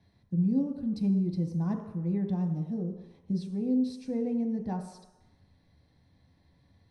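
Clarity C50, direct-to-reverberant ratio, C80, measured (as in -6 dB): 7.5 dB, 3.0 dB, 9.0 dB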